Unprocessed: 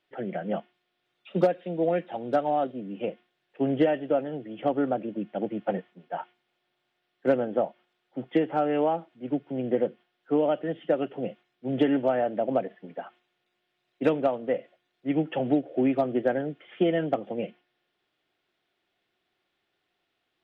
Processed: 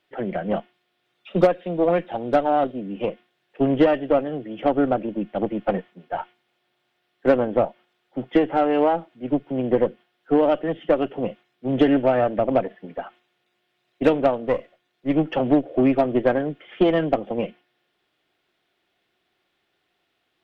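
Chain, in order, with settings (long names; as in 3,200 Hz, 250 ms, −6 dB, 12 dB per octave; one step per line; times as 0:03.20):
0:14.47–0:15.14: gain on one half-wave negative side −3 dB
harmonic generator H 6 −24 dB, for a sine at −10 dBFS
level +5.5 dB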